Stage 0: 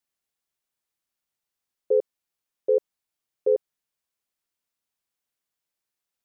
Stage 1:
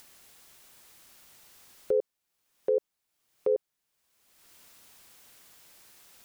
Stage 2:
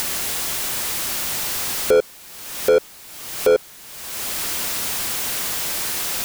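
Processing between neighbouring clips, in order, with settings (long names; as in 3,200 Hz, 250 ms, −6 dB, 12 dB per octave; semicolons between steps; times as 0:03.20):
in parallel at 0 dB: upward compression, threshold −26 dBFS; on the sum: brickwall limiter −14 dBFS, peak gain reduction 7.5 dB; level −4 dB
upward compression, threshold −36 dBFS; power curve on the samples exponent 0.5; level +9 dB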